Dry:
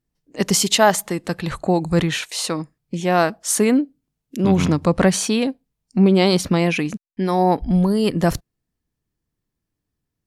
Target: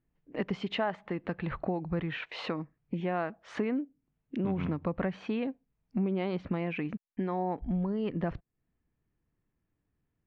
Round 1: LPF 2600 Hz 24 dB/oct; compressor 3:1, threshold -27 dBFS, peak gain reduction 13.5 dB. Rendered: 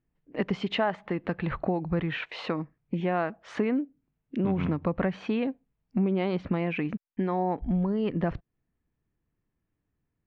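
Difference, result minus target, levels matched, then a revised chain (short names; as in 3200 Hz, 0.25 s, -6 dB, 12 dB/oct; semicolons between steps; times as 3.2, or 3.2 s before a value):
compressor: peak gain reduction -4.5 dB
LPF 2600 Hz 24 dB/oct; compressor 3:1, threshold -33.5 dBFS, peak gain reduction 18 dB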